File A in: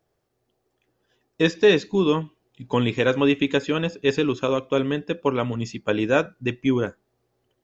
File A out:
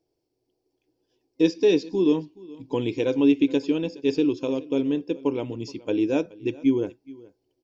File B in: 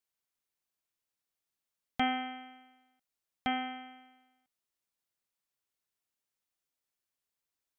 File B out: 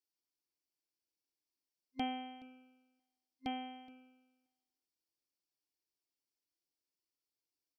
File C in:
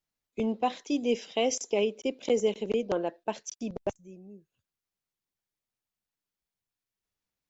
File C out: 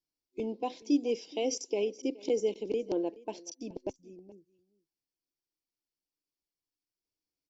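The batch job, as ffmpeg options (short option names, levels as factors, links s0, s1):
-af "superequalizer=6b=3.55:7b=1.78:10b=0.282:11b=0.355:14b=2.51,aecho=1:1:423:0.0841,volume=0.398"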